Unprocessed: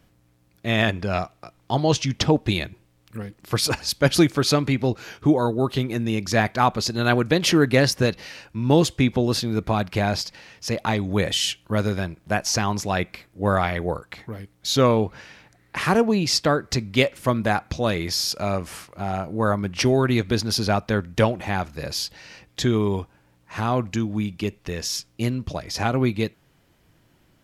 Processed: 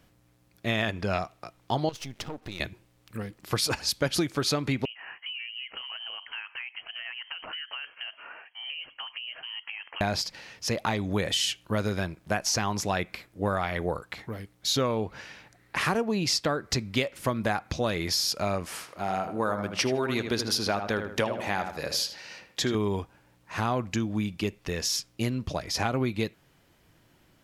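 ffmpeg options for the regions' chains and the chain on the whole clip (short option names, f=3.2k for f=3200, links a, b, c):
-filter_complex "[0:a]asettb=1/sr,asplit=3[a][b][c];[a]atrim=end=1.894[d];[b]atrim=start=1.89:end=2.6,asetpts=PTS-STARTPTS,afade=t=in:d=0.004:c=qsin,afade=t=out:st=0.706:d=0.004:c=qsin,aeval=exprs='if(lt(val(0),0),0.251*val(0),val(0))':c=same,acrusher=bits=8:mix=0:aa=0.5,acompressor=threshold=-33dB:ratio=4:attack=3.2:release=140:knee=1:detection=peak[e];[c]atrim=start=2.596[f];[d][e]acrossfade=d=0.004:c1=hsin:c2=qsin[g];[g][f]acrossfade=d=0.004:c1=qsin:c2=hsin,asettb=1/sr,asplit=3[h][i][j];[h]atrim=end=4.854[k];[i]atrim=start=4.85:end=10.01,asetpts=PTS-STARTPTS,afade=t=in:d=0.004:c=qsin,afade=t=out:st=5.156:d=0.004:c=qsin,acrossover=split=360 2500:gain=0.0794 1 0.0891[l][m][n];[l][m][n]amix=inputs=3:normalize=0,acompressor=threshold=-33dB:ratio=16:attack=3.2:release=140:knee=1:detection=peak,lowpass=f=2.8k:t=q:w=0.5098,lowpass=f=2.8k:t=q:w=0.6013,lowpass=f=2.8k:t=q:w=0.9,lowpass=f=2.8k:t=q:w=2.563,afreqshift=-3300[o];[j]atrim=start=10.006[p];[k][o]acrossfade=d=0.004:c1=hsin:c2=qsin[q];[q][p]acrossfade=d=0.004:c1=qsin:c2=hsin,asettb=1/sr,asplit=3[r][s][t];[r]atrim=end=18.654[u];[s]atrim=start=18.65:end=22.75,asetpts=PTS-STARTPTS,afade=t=in:d=0.004:c=qsin,afade=t=out:st=4.096:d=0.004:c=qsin,lowshelf=f=140:g=-12,asplit=2[v][w];[w]adelay=78,lowpass=f=2.8k:p=1,volume=-8dB,asplit=2[x][y];[y]adelay=78,lowpass=f=2.8k:p=1,volume=0.37,asplit=2[z][aa];[aa]adelay=78,lowpass=f=2.8k:p=1,volume=0.37,asplit=2[ab][ac];[ac]adelay=78,lowpass=f=2.8k:p=1,volume=0.37[ad];[v][x][z][ab][ad]amix=inputs=5:normalize=0,atrim=end_sample=180810[ae];[t]atrim=start=22.746[af];[u][ae]acrossfade=d=0.004:c1=hsin:c2=qsin[ag];[ag][af]acrossfade=d=0.004:c1=qsin:c2=hsin,lowshelf=f=350:g=-3.5,acompressor=threshold=-23dB:ratio=6"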